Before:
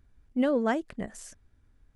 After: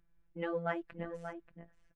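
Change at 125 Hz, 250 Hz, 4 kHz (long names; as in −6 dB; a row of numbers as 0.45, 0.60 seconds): +0.5, −14.0, −10.5 decibels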